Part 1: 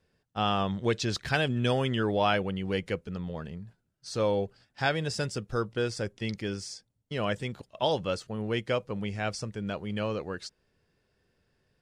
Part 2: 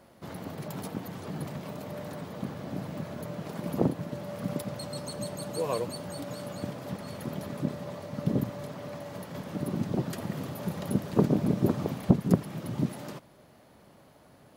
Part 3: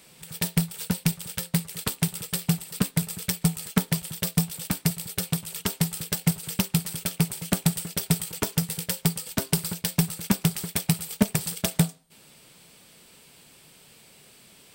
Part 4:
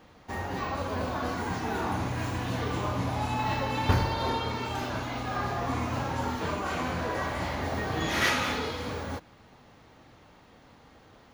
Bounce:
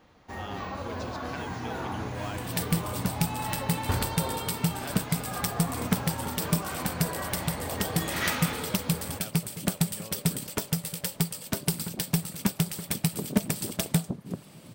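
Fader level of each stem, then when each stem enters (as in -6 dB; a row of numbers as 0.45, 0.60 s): -14.5, -12.5, -3.5, -4.0 dB; 0.00, 2.00, 2.15, 0.00 s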